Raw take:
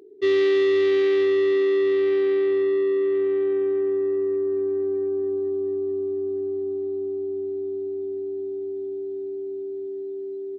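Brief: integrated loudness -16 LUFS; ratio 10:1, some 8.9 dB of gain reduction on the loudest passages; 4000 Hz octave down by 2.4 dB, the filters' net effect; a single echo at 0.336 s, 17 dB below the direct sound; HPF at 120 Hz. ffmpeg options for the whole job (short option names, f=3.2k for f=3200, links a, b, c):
-af "highpass=120,equalizer=f=4k:t=o:g=-3,acompressor=threshold=-27dB:ratio=10,aecho=1:1:336:0.141,volume=13dB"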